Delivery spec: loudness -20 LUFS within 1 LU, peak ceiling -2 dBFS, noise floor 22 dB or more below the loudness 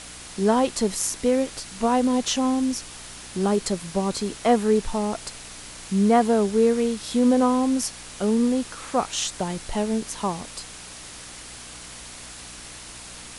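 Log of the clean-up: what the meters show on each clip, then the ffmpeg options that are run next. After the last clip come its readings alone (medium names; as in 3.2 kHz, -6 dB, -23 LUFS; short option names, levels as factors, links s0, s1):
hum 60 Hz; highest harmonic 300 Hz; hum level -50 dBFS; noise floor -41 dBFS; noise floor target -46 dBFS; loudness -23.5 LUFS; peak level -6.5 dBFS; loudness target -20.0 LUFS
-> -af "bandreject=f=60:t=h:w=4,bandreject=f=120:t=h:w=4,bandreject=f=180:t=h:w=4,bandreject=f=240:t=h:w=4,bandreject=f=300:t=h:w=4"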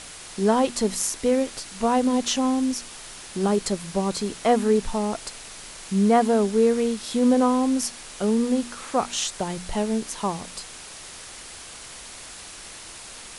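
hum not found; noise floor -41 dBFS; noise floor target -46 dBFS
-> -af "afftdn=nr=6:nf=-41"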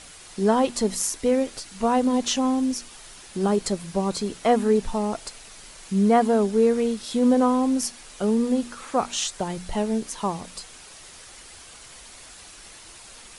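noise floor -46 dBFS; loudness -23.5 LUFS; peak level -7.0 dBFS; loudness target -20.0 LUFS
-> -af "volume=1.5"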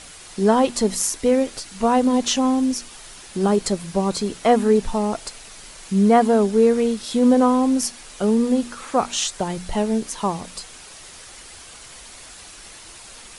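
loudness -20.0 LUFS; peak level -3.5 dBFS; noise floor -42 dBFS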